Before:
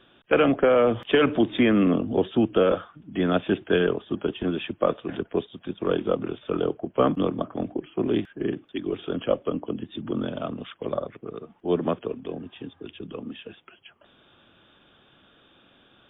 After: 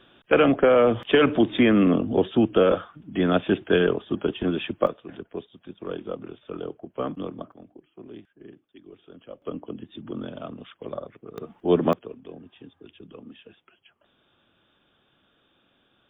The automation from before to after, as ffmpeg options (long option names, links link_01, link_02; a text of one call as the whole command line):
ffmpeg -i in.wav -af "asetnsamples=nb_out_samples=441:pad=0,asendcmd='4.87 volume volume -8.5dB;7.52 volume volume -18.5dB;9.42 volume volume -5.5dB;11.38 volume volume 4dB;11.93 volume volume -8dB',volume=1.5dB" out.wav